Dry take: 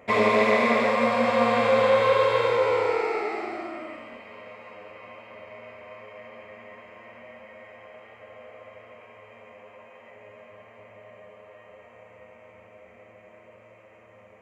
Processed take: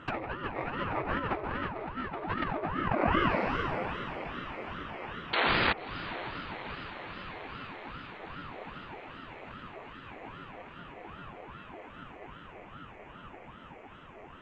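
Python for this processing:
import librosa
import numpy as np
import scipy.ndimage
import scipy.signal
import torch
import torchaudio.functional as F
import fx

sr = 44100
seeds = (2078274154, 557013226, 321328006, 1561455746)

y = fx.spec_paint(x, sr, seeds[0], shape='noise', start_s=5.33, length_s=0.4, low_hz=400.0, high_hz=4300.0, level_db=-23.0)
y = fx.env_lowpass_down(y, sr, base_hz=2000.0, full_db=-22.0)
y = fx.over_compress(y, sr, threshold_db=-27.0, ratio=-0.5)
y = scipy.signal.sosfilt(scipy.signal.bessel(2, 5600.0, 'lowpass', norm='mag', fs=sr, output='sos'), y)
y = fx.echo_diffused(y, sr, ms=597, feedback_pct=70, wet_db=-14.0)
y = fx.ring_lfo(y, sr, carrier_hz=450.0, swing_pct=80, hz=2.5)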